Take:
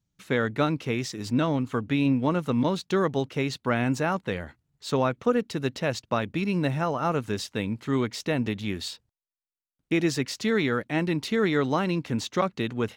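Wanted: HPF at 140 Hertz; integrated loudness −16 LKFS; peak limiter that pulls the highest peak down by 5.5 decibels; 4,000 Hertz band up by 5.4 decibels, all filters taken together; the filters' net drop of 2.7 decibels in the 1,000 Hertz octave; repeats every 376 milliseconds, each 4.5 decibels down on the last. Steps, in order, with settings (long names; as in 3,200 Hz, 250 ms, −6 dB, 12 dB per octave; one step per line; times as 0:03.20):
high-pass filter 140 Hz
parametric band 1,000 Hz −4 dB
parametric band 4,000 Hz +6.5 dB
brickwall limiter −16 dBFS
repeating echo 376 ms, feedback 60%, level −4.5 dB
level +11 dB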